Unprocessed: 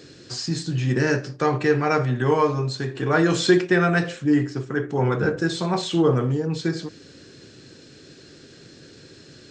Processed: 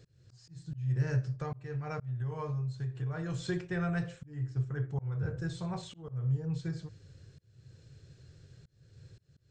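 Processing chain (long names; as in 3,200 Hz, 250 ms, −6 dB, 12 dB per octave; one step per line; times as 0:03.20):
drawn EQ curve 120 Hz 0 dB, 260 Hz −28 dB, 500 Hz −19 dB, 5,100 Hz −23 dB, 8,400 Hz −18 dB
volume swells 401 ms
0:01.33–0:03.46: downward compressor, threshold −36 dBFS, peak gain reduction 8.5 dB
level +3.5 dB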